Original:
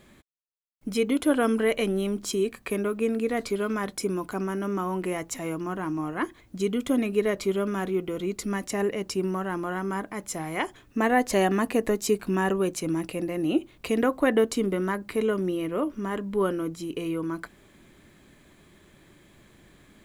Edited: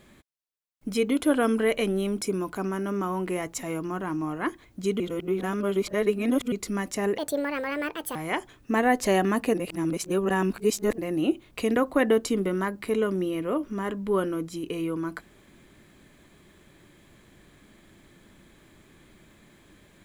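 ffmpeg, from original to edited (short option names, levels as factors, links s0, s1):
-filter_complex "[0:a]asplit=8[s0][s1][s2][s3][s4][s5][s6][s7];[s0]atrim=end=2.212[s8];[s1]atrim=start=3.968:end=6.762[s9];[s2]atrim=start=6.758:end=8.282,asetpts=PTS-STARTPTS,areverse[s10];[s3]atrim=start=8.278:end=8.944[s11];[s4]atrim=start=8.94:end=10.42,asetpts=PTS-STARTPTS,asetrate=67032,aresample=44100,atrim=end_sample=42939,asetpts=PTS-STARTPTS[s12];[s5]atrim=start=10.416:end=11.812[s13];[s6]atrim=start=11.808:end=13.252,asetpts=PTS-STARTPTS,areverse[s14];[s7]atrim=start=13.248[s15];[s8][s9]acrossfade=d=0.004:c1=hsin:c2=hsin[s16];[s16][s10]acrossfade=d=0.004:c1=hsin:c2=hsin[s17];[s17][s11]acrossfade=d=0.004:c1=hsin:c2=hsin[s18];[s18][s12]acrossfade=d=0.004:c1=hsin:c2=hsin[s19];[s19][s13]acrossfade=d=0.004:c1=hsin:c2=hsin[s20];[s20][s14]acrossfade=d=0.004:c1=hsin:c2=hsin[s21];[s21][s15]acrossfade=d=0.004:c1=hsin:c2=hsin"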